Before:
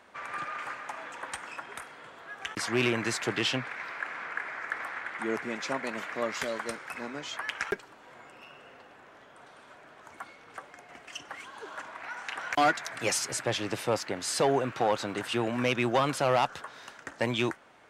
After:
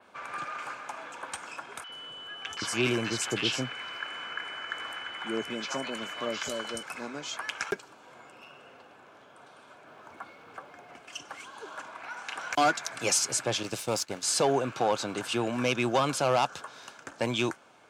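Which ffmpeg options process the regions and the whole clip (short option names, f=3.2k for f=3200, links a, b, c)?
-filter_complex "[0:a]asettb=1/sr,asplit=3[a][b][c];[a]atrim=end=1.844[d];[b]atrim=start=1.84:end=6.83,asetpts=PTS-STARTPTS,afade=t=in:d=0.004:c=qsin,afade=t=out:st=4.986:d=0.004:c=qsin,equalizer=f=81:t=o:w=0.43:g=8,aeval=exprs='val(0)+0.00794*sin(2*PI*3000*n/s)':c=same,acrossover=split=820|5200[e][f][g];[e]adelay=50[h];[g]adelay=80[i];[h][f][i]amix=inputs=3:normalize=0,atrim=end_sample=220059[j];[c]atrim=start=6.826[k];[d][j]acrossfade=d=0.004:c1=hsin:c2=qsin[l];[l][k]acrossfade=d=0.004:c1=qsin:c2=hsin,asettb=1/sr,asplit=3[m][n][o];[m]atrim=end=9.874[p];[n]atrim=start=9.87:end=10.95,asetpts=PTS-STARTPTS,afade=t=in:d=0.004:c=qsin,afade=t=out:st=1.076:d=0.004:c=qsin,aeval=exprs='val(0)+0.5*0.00211*sgn(val(0))':c=same,lowpass=f=2.7k:p=1[q];[o]atrim=start=10.946[r];[p][q]acrossfade=d=0.004:c1=hsin:c2=qsin[s];[s][r]acrossfade=d=0.004:c1=qsin:c2=hsin,asettb=1/sr,asplit=3[t][u][v];[t]atrim=end=13.634[w];[u]atrim=start=13.63:end=14.23,asetpts=PTS-STARTPTS,afade=t=in:d=0.004:c=qsin,afade=t=out:st=0.596:d=0.004:c=qsin,aeval=exprs='if(lt(val(0),0),0.447*val(0),val(0))':c=same,agate=range=-33dB:threshold=-37dB:ratio=3:release=100:detection=peak,highshelf=f=4.1k:g=8.5[x];[v]atrim=start=14.226[y];[w][x]acrossfade=d=0.004:c1=hsin:c2=qsin[z];[z][y]acrossfade=d=0.004:c1=qsin:c2=hsin,highpass=79,bandreject=f=1.9k:w=5.6,adynamicequalizer=threshold=0.00251:dfrequency=6700:dqfactor=1.1:tfrequency=6700:tqfactor=1.1:attack=5:release=100:ratio=0.375:range=3:mode=boostabove:tftype=bell"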